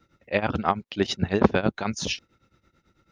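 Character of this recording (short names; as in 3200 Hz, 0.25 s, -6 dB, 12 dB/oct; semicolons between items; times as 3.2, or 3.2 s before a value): tremolo triangle 9.1 Hz, depth 90%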